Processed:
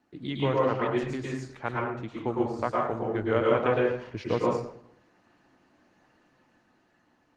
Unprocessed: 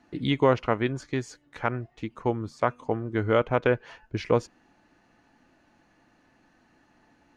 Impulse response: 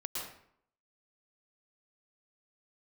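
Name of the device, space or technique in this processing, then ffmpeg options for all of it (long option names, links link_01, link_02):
far-field microphone of a smart speaker: -filter_complex "[1:a]atrim=start_sample=2205[link_01];[0:a][link_01]afir=irnorm=-1:irlink=0,highpass=frequency=89:width=0.5412,highpass=frequency=89:width=1.3066,dynaudnorm=framelen=220:gausssize=9:maxgain=4dB,volume=-5dB" -ar 48000 -c:a libopus -b:a 16k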